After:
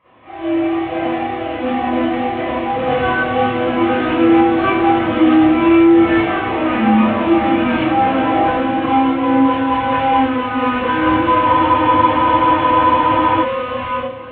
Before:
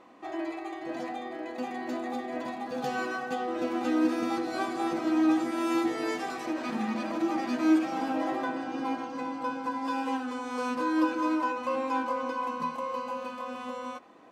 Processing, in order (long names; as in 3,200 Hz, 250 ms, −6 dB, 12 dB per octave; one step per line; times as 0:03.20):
variable-slope delta modulation 16 kbit/s
high-pass filter 64 Hz
parametric band 110 Hz +12 dB 0.42 octaves
hum removal 112.3 Hz, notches 2
automatic gain control gain up to 10.5 dB
feedback delay with all-pass diffusion 517 ms, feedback 65%, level −15.5 dB
convolution reverb, pre-delay 39 ms, DRR −10 dB
multi-voice chorus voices 4, 0.2 Hz, delay 29 ms, depth 2.6 ms
boost into a limiter −2 dB
frozen spectrum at 0:11.48, 1.96 s
level −2.5 dB